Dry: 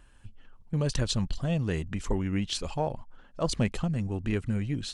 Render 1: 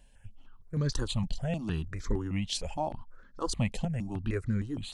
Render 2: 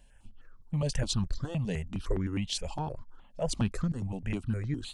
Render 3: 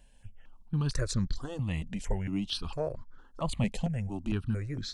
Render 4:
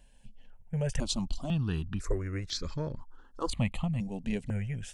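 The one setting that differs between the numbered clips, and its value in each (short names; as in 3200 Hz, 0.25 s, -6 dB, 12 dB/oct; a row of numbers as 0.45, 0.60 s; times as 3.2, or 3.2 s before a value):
step phaser, rate: 6.5, 9.7, 4.4, 2 Hz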